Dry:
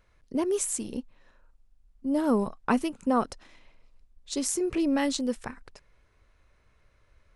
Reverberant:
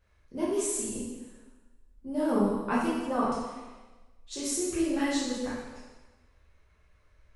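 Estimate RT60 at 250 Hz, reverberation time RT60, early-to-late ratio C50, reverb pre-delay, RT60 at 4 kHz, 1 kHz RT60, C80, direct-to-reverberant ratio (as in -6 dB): 1.2 s, 1.2 s, -0.5 dB, 4 ms, 1.1 s, 1.2 s, 3.0 dB, -9.0 dB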